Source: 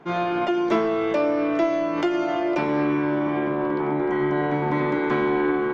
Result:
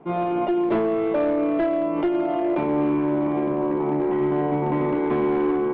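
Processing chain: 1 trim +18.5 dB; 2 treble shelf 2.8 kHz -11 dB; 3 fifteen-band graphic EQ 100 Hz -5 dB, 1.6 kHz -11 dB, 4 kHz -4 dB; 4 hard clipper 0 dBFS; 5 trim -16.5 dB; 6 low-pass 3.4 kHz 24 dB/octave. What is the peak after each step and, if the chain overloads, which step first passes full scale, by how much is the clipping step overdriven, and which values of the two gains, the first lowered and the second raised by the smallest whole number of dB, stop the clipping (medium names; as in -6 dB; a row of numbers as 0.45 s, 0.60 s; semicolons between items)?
+7.5 dBFS, +7.0 dBFS, +6.5 dBFS, 0.0 dBFS, -16.5 dBFS, -16.0 dBFS; step 1, 6.5 dB; step 1 +11.5 dB, step 5 -9.5 dB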